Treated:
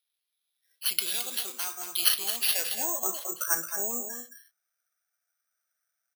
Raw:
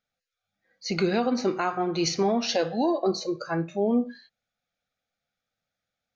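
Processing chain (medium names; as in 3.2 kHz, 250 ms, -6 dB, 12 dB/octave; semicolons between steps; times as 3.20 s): band-pass sweep 3.7 kHz -> 1.5 kHz, 2.25–2.98 s; delay 219 ms -8 dB; careless resampling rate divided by 6×, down none, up zero stuff; trim +2.5 dB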